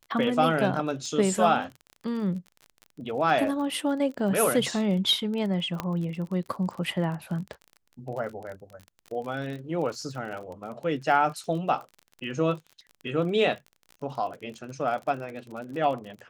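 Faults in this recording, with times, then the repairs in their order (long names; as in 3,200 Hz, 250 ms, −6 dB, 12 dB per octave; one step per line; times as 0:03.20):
surface crackle 31 per second −35 dBFS
0:05.80: click −14 dBFS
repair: click removal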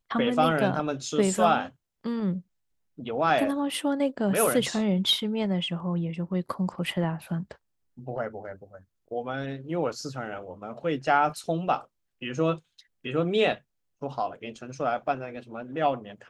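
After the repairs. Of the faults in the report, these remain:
0:05.80: click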